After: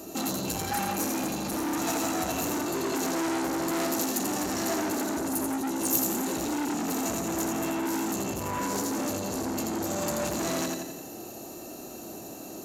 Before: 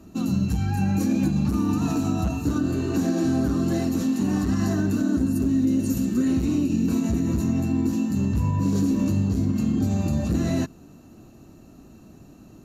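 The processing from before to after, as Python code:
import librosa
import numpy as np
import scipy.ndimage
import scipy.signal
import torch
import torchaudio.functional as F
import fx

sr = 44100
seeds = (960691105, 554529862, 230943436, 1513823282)

p1 = fx.band_shelf(x, sr, hz=520.0, db=8.0, octaves=1.7)
p2 = fx.over_compress(p1, sr, threshold_db=-26.0, ratio=-1.0)
p3 = p1 + F.gain(torch.from_numpy(p2), 0.0).numpy()
p4 = fx.echo_feedback(p3, sr, ms=85, feedback_pct=51, wet_db=-4.5)
p5 = 10.0 ** (-19.5 / 20.0) * np.tanh(p4 / 10.0 ** (-19.5 / 20.0))
p6 = fx.riaa(p5, sr, side='recording')
y = F.gain(torch.from_numpy(p6), -3.0).numpy()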